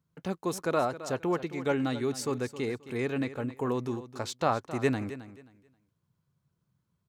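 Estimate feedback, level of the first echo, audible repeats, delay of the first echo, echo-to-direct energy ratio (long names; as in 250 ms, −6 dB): 23%, −14.0 dB, 2, 266 ms, −13.5 dB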